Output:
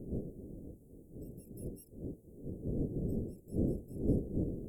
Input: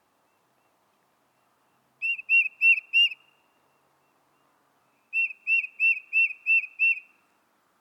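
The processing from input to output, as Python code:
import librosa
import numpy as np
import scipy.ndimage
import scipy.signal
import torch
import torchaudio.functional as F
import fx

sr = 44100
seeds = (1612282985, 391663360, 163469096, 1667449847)

y = fx.dmg_wind(x, sr, seeds[0], corner_hz=370.0, level_db=-40.0)
y = fx.stretch_vocoder(y, sr, factor=0.6)
y = scipy.signal.sosfilt(scipy.signal.cheby2(4, 60, [1200.0, 3700.0], 'bandstop', fs=sr, output='sos'), y)
y = F.gain(torch.from_numpy(y), 4.0).numpy()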